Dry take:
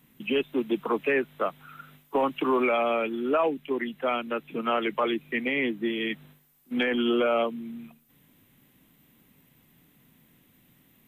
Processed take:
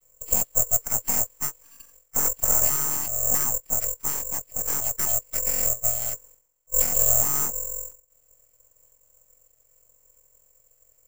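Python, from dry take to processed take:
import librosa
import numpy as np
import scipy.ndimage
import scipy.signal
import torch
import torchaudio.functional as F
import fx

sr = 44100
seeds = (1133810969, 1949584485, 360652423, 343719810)

y = fx.chord_vocoder(x, sr, chord='minor triad', root=58)
y = np.abs(y)
y = (np.kron(scipy.signal.resample_poly(y, 1, 6), np.eye(6)[0]) * 6)[:len(y)]
y = y * librosa.db_to_amplitude(-4.0)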